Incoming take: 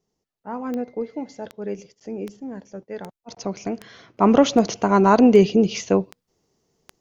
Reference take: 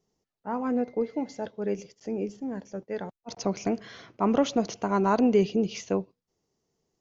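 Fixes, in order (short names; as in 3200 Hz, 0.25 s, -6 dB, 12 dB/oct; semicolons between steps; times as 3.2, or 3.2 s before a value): de-click; gain 0 dB, from 4.17 s -8.5 dB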